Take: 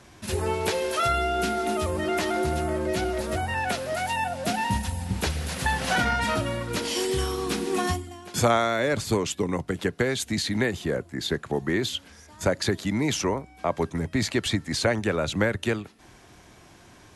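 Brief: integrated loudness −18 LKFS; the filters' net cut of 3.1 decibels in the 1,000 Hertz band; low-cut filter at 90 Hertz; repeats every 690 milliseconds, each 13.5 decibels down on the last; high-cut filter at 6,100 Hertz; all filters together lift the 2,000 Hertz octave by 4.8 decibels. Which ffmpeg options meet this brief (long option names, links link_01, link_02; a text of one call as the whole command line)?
ffmpeg -i in.wav -af "highpass=90,lowpass=6100,equalizer=frequency=1000:width_type=o:gain=-8,equalizer=frequency=2000:width_type=o:gain=8.5,aecho=1:1:690|1380:0.211|0.0444,volume=8dB" out.wav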